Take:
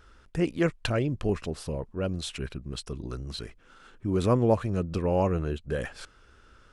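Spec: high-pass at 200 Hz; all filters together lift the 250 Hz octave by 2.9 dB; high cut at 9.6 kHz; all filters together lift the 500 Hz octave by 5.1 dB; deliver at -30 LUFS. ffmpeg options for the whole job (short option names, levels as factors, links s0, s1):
-af "highpass=200,lowpass=9600,equalizer=f=250:t=o:g=4.5,equalizer=f=500:t=o:g=5,volume=0.631"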